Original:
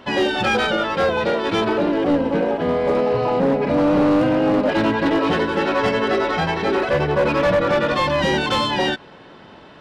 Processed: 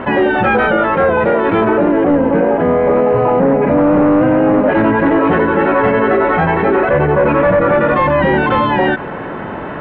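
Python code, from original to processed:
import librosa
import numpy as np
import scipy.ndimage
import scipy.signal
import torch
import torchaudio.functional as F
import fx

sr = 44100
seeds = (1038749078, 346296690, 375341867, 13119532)

y = scipy.signal.sosfilt(scipy.signal.butter(4, 2100.0, 'lowpass', fs=sr, output='sos'), x)
y = fx.env_flatten(y, sr, amount_pct=50)
y = F.gain(torch.from_numpy(y), 5.0).numpy()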